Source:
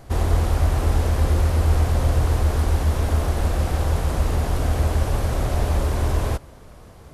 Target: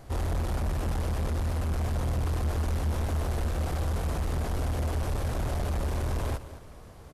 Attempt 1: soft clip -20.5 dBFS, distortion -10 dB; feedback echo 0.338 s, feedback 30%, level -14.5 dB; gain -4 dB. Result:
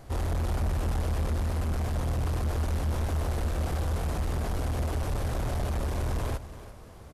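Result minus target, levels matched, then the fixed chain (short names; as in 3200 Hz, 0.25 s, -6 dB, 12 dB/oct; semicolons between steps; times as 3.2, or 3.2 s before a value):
echo 0.125 s late
soft clip -20.5 dBFS, distortion -10 dB; feedback echo 0.213 s, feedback 30%, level -14.5 dB; gain -4 dB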